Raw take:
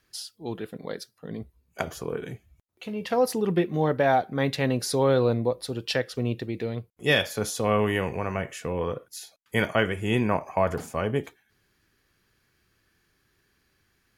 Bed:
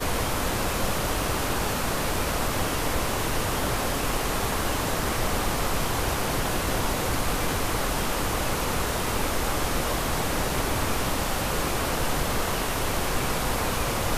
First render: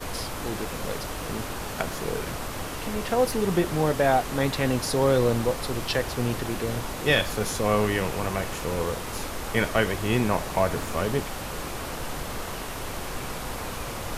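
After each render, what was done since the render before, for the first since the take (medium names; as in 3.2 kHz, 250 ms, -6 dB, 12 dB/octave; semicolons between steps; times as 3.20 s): add bed -7 dB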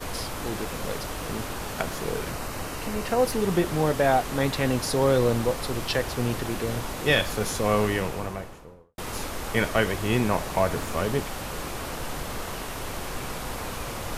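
2.29–3.25 s: band-stop 3.4 kHz, Q 10; 7.81–8.98 s: studio fade out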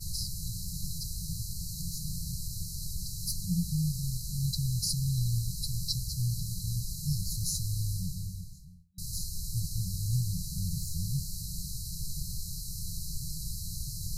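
FFT band-reject 190–3900 Hz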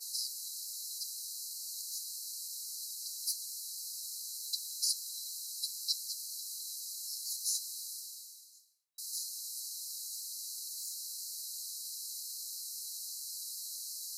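steep high-pass 410 Hz 96 dB/octave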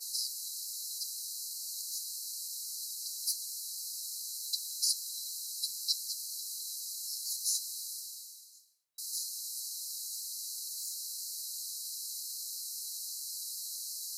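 trim +2 dB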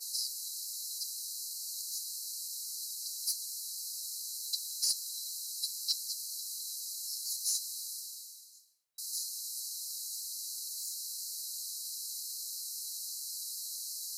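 saturation -18 dBFS, distortion -28 dB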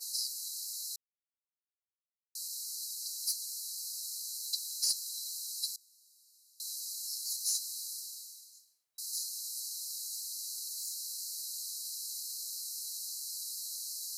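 0.96–2.35 s: mute; 5.76–6.60 s: room tone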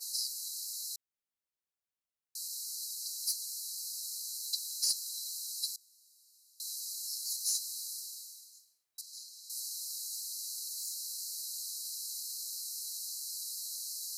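9.01–9.50 s: low-pass 2 kHz 6 dB/octave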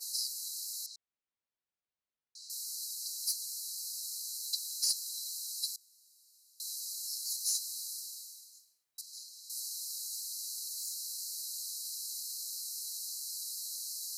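0.86–2.50 s: distance through air 120 m; 9.81–11.11 s: bass shelf 200 Hz +9.5 dB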